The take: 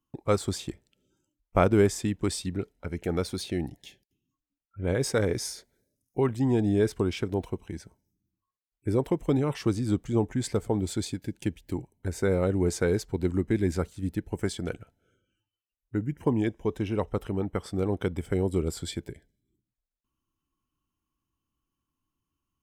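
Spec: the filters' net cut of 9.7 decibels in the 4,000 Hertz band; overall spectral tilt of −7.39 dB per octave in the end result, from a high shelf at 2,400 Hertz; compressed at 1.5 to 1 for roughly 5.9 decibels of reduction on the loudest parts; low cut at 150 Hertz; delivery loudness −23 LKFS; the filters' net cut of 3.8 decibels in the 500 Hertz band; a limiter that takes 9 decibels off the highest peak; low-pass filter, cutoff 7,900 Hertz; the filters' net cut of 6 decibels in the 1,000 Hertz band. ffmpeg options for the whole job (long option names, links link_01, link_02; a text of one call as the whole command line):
ffmpeg -i in.wav -af "highpass=150,lowpass=7900,equalizer=frequency=500:width_type=o:gain=-3.5,equalizer=frequency=1000:width_type=o:gain=-5.5,highshelf=frequency=2400:gain=-6.5,equalizer=frequency=4000:width_type=o:gain=-5.5,acompressor=threshold=-36dB:ratio=1.5,volume=15dB,alimiter=limit=-9.5dB:level=0:latency=1" out.wav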